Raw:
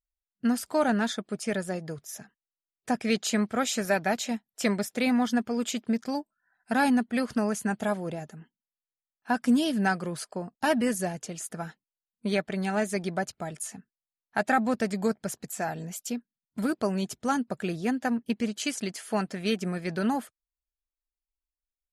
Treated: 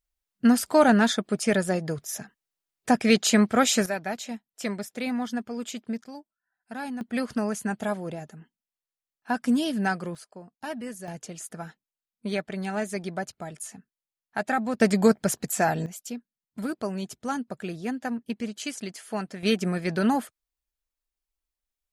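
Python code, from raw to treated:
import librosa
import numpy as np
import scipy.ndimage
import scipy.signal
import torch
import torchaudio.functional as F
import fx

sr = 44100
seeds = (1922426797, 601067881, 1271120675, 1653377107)

y = fx.gain(x, sr, db=fx.steps((0.0, 6.5), (3.86, -4.5), (6.04, -11.0), (7.01, -0.5), (10.15, -10.0), (11.08, -2.0), (14.81, 8.0), (15.86, -3.0), (19.43, 4.0)))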